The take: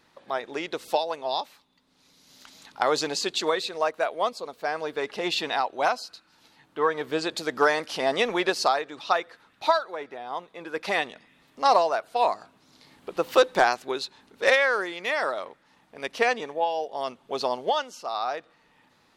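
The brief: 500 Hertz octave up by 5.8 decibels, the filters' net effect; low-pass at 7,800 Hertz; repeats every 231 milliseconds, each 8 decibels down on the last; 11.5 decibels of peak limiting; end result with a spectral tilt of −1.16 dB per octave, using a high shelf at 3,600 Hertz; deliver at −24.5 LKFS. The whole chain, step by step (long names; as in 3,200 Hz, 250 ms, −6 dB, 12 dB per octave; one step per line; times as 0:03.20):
low-pass filter 7,800 Hz
parametric band 500 Hz +7 dB
high-shelf EQ 3,600 Hz −4.5 dB
brickwall limiter −14 dBFS
repeating echo 231 ms, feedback 40%, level −8 dB
level +1.5 dB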